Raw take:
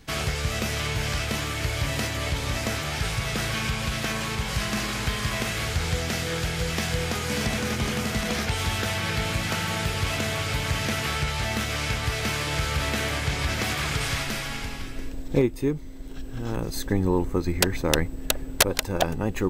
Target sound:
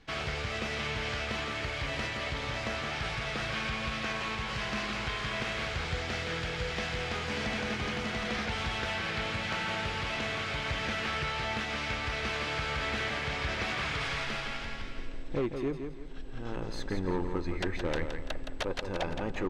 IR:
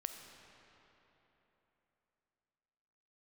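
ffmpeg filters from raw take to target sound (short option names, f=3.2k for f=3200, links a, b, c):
-filter_complex "[0:a]equalizer=f=96:w=0.34:g=-7,volume=22dB,asoftclip=hard,volume=-22dB,lowpass=3.8k,asplit=2[a][b];[b]aecho=0:1:168|336|504|672:0.447|0.156|0.0547|0.0192[c];[a][c]amix=inputs=2:normalize=0,volume=-4dB"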